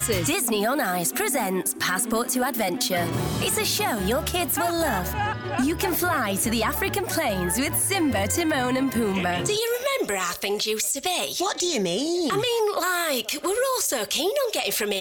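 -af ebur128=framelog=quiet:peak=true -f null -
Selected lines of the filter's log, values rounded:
Integrated loudness:
  I:         -23.7 LUFS
  Threshold: -33.7 LUFS
Loudness range:
  LRA:         1.0 LU
  Threshold: -43.7 LUFS
  LRA low:   -24.1 LUFS
  LRA high:  -23.2 LUFS
True peak:
  Peak:      -12.2 dBFS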